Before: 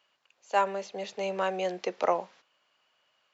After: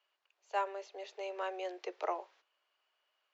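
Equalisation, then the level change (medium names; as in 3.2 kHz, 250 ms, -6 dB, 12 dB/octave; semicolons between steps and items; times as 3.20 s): steep high-pass 320 Hz 48 dB/octave; Bessel low-pass 5.8 kHz; band-stop 520 Hz, Q 13; -8.5 dB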